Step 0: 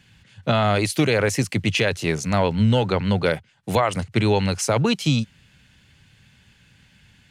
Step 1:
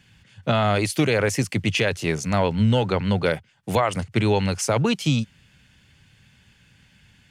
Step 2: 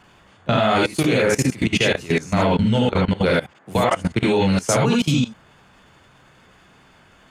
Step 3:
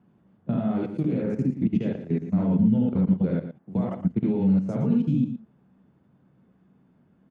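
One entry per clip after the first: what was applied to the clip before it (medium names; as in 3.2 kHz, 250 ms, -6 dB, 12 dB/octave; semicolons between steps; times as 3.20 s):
band-stop 4 kHz, Q 18; trim -1 dB
gated-style reverb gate 100 ms rising, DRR -3 dB; level held to a coarse grid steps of 19 dB; band noise 150–1700 Hz -57 dBFS; trim +2 dB
band-pass filter 200 Hz, Q 2.1; delay 116 ms -10.5 dB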